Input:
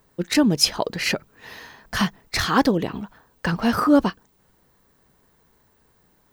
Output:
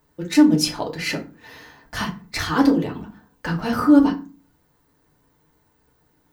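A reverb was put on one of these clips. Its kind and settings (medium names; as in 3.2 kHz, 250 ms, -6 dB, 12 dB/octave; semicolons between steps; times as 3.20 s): FDN reverb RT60 0.34 s, low-frequency decay 1.55×, high-frequency decay 0.65×, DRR -0.5 dB; trim -5.5 dB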